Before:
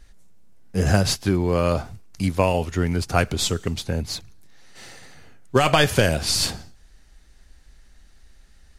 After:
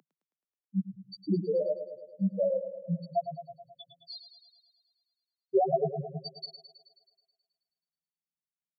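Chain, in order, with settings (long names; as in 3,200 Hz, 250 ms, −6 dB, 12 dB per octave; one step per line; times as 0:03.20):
spectral peaks only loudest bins 1
Butterworth high-pass 150 Hz 96 dB per octave
feedback echo with a high-pass in the loop 107 ms, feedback 64%, high-pass 190 Hz, level −9.5 dB
level +3.5 dB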